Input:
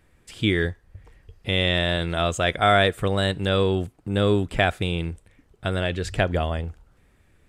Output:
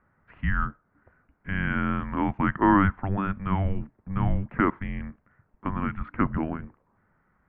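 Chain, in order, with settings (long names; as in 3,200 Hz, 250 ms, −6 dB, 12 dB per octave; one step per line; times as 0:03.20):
low-shelf EQ 250 Hz −5.5 dB
single-sideband voice off tune −390 Hz 170–2,200 Hz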